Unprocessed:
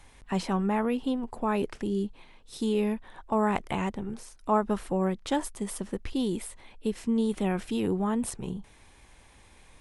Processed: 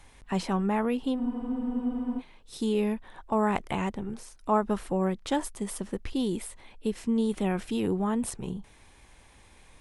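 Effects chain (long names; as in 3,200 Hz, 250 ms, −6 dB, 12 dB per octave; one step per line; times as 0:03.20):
frozen spectrum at 0:01.21, 0.98 s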